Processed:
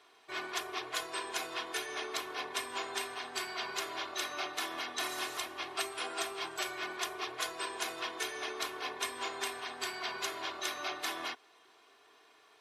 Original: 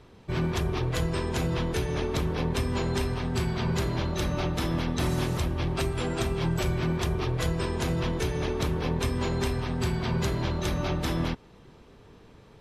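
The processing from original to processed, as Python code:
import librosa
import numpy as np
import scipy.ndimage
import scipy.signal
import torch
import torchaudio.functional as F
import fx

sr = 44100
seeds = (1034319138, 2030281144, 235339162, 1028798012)

y = scipy.signal.sosfilt(scipy.signal.butter(2, 880.0, 'highpass', fs=sr, output='sos'), x)
y = y + 0.67 * np.pad(y, (int(2.8 * sr / 1000.0), 0))[:len(y)]
y = y * librosa.db_to_amplitude(-2.0)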